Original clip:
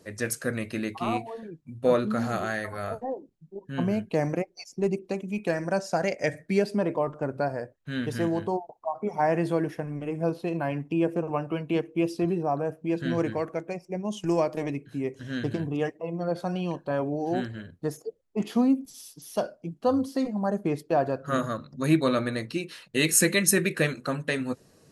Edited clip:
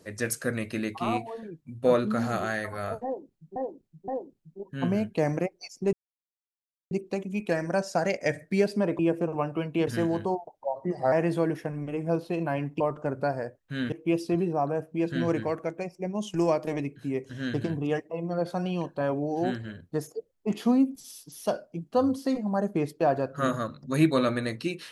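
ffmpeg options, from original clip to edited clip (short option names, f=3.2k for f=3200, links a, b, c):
-filter_complex "[0:a]asplit=10[a][b][c][d][e][f][g][h][i][j];[a]atrim=end=3.562[k];[b]atrim=start=3.038:end=3.562[l];[c]atrim=start=3.038:end=4.89,asetpts=PTS-STARTPTS,afade=t=out:st=1.848:d=0.004:c=hsin,apad=pad_dur=0.98[m];[d]atrim=start=4.89:end=6.972,asetpts=PTS-STARTPTS,afade=t=in:d=0.004:c=hsin[n];[e]atrim=start=10.938:end=11.822[o];[f]atrim=start=8.088:end=8.764[p];[g]atrim=start=8.76:end=9.26,asetpts=PTS-STARTPTS,asetrate=37926,aresample=44100[q];[h]atrim=start=9.256:end=10.942[r];[i]atrim=start=6.968:end=8.092[s];[j]atrim=start=11.818[t];[k][l]acrossfade=d=0.004:c1=hsin:c2=hsin[u];[m][n]concat=n=2:v=0:a=1[v];[u][v]acrossfade=d=0.004:c1=hsin:c2=hsin[w];[w][o]acrossfade=d=0.004:c1=hsin:c2=hsin[x];[x][p]acrossfade=d=0.004:c1=hsin:c2=hsin[y];[y][q]acrossfade=d=0.004:c1=hsin:c2=hsin[z];[z][r]acrossfade=d=0.004:c1=hsin:c2=hsin[aa];[aa][s]acrossfade=d=0.004:c1=hsin:c2=hsin[ab];[ab][t]acrossfade=d=0.004:c1=hsin:c2=hsin"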